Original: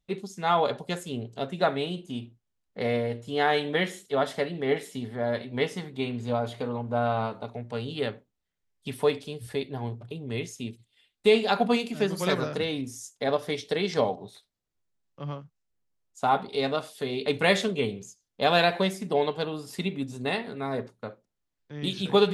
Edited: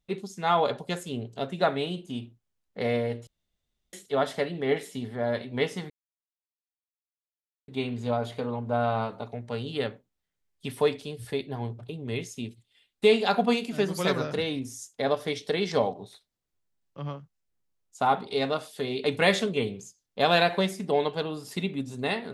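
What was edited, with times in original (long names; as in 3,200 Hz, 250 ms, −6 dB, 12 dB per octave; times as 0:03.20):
0:03.27–0:03.93: fill with room tone
0:05.90: splice in silence 1.78 s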